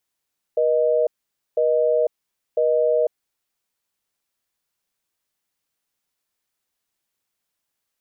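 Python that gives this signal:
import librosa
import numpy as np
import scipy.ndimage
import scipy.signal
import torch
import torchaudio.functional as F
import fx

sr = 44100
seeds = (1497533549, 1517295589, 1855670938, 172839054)

y = fx.call_progress(sr, length_s=2.7, kind='busy tone', level_db=-18.5)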